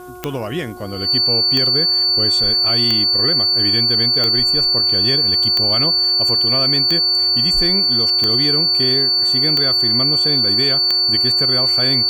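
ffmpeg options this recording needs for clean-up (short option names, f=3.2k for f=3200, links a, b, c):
-af "adeclick=t=4,bandreject=f=362.1:t=h:w=4,bandreject=f=724.2:t=h:w=4,bandreject=f=1.0863k:t=h:w=4,bandreject=f=1.4484k:t=h:w=4,bandreject=f=4.5k:w=30,agate=range=-21dB:threshold=-8dB"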